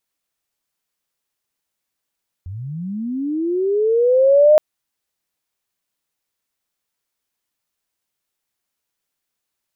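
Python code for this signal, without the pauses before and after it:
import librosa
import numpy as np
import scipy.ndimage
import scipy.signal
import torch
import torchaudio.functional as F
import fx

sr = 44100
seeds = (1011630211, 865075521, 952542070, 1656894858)

y = fx.chirp(sr, length_s=2.12, from_hz=84.0, to_hz=620.0, law='linear', from_db=-27.5, to_db=-6.5)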